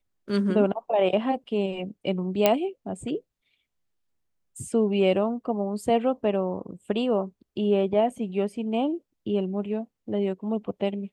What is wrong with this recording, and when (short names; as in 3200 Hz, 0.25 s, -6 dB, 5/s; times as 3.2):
2.46 pop -5 dBFS